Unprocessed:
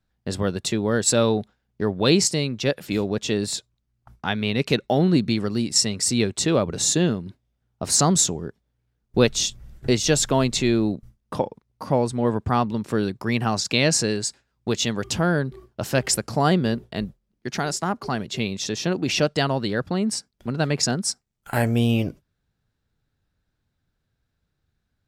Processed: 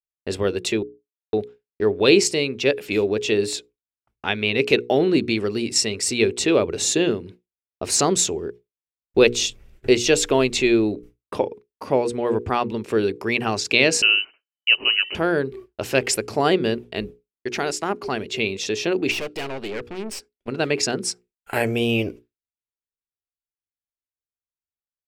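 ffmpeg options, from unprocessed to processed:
ffmpeg -i in.wav -filter_complex "[0:a]asettb=1/sr,asplit=3[link_01][link_02][link_03];[link_01]atrim=end=14.024[link_04];[link_02]atrim=start=14.02:end=15.15,asetpts=PTS-STARTPTS,afade=type=in:duration=0.004:curve=qsin,afade=type=out:start_time=1.126:duration=0.004:curve=qsin,lowpass=frequency=2600:width_type=q:width=0.5098,lowpass=frequency=2600:width_type=q:width=0.6013,lowpass=frequency=2600:width_type=q:width=0.9,lowpass=frequency=2600:width_type=q:width=2.563,afreqshift=-3100[link_05];[link_03]atrim=start=15.146[link_06];[link_04][link_05]acrossfade=duration=0.004:curve1=hsin:curve2=qsin[link_07];[link_07][link_06]acrossfade=duration=0.004:curve1=qsin:curve2=hsin,asettb=1/sr,asplit=3[link_08][link_09][link_10];[link_08]atrim=end=19.114[link_11];[link_09]atrim=start=19.11:end=20.48,asetpts=PTS-STARTPTS,afade=type=in:duration=0.004:curve=qsin,afade=type=out:start_time=1.366:duration=0.004:curve=qsin,aeval=exprs='(tanh(25.1*val(0)+0.6)-tanh(0.6))/25.1':channel_layout=same[link_12];[link_10]atrim=start=20.476[link_13];[link_11][link_12]acrossfade=duration=0.004:curve1=hsin:curve2=qsin[link_14];[link_14][link_13]acrossfade=duration=0.004:curve1=qsin:curve2=hsin,asplit=3[link_15][link_16][link_17];[link_15]atrim=end=0.83,asetpts=PTS-STARTPTS,afade=type=out:start_time=0.826:duration=0.004:curve=hsin[link_18];[link_16]atrim=start=0.83:end=1.33,asetpts=PTS-STARTPTS,volume=0[link_19];[link_17]atrim=start=1.33,asetpts=PTS-STARTPTS,afade=type=in:duration=0.004:curve=hsin[link_20];[link_18][link_19][link_20]concat=n=3:v=0:a=1,bandreject=frequency=60:width_type=h:width=6,bandreject=frequency=120:width_type=h:width=6,bandreject=frequency=180:width_type=h:width=6,bandreject=frequency=240:width_type=h:width=6,bandreject=frequency=300:width_type=h:width=6,bandreject=frequency=360:width_type=h:width=6,bandreject=frequency=420:width_type=h:width=6,bandreject=frequency=480:width_type=h:width=6,agate=range=-33dB:threshold=-39dB:ratio=3:detection=peak,equalizer=frequency=160:width_type=o:width=0.67:gain=-8,equalizer=frequency=400:width_type=o:width=0.67:gain=10,equalizer=frequency=2500:width_type=o:width=0.67:gain=10,volume=-1.5dB" out.wav

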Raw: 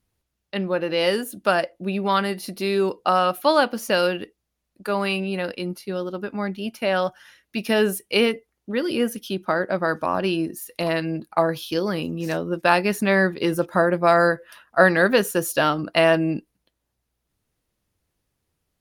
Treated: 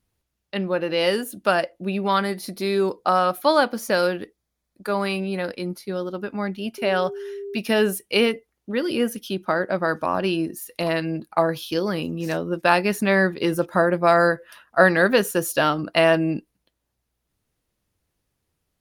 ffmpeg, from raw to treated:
ffmpeg -i in.wav -filter_complex "[0:a]asettb=1/sr,asplit=3[link_01][link_02][link_03];[link_01]atrim=end=2.154[link_04];[link_02]atrim=start=2.15:end=6.14,asetpts=PTS-STARTPTS,afade=type=in:duration=0.004:curve=qsin,afade=type=out:start_time=3.986:duration=0.004:curve=qsin,bandreject=frequency=2800:width=7.6[link_05];[link_03]atrim=start=6.136[link_06];[link_04][link_05]acrossfade=duration=0.004:curve1=hsin:curve2=qsin[link_07];[link_07][link_06]acrossfade=duration=0.004:curve1=qsin:curve2=hsin,asettb=1/sr,asplit=3[link_08][link_09][link_10];[link_08]atrim=end=6.784[link_11];[link_09]atrim=start=6.78:end=7.57,asetpts=PTS-STARTPTS,afade=type=in:duration=0.004:curve=qsin,afade=type=out:start_time=0.786:duration=0.004:curve=qsin,aeval=exprs='val(0)+0.0316*sin(2*PI*400*n/s)':channel_layout=same[link_12];[link_10]atrim=start=7.566[link_13];[link_11][link_12]acrossfade=duration=0.004:curve1=hsin:curve2=qsin[link_14];[link_14][link_13]acrossfade=duration=0.004:curve1=qsin:curve2=hsin" out.wav

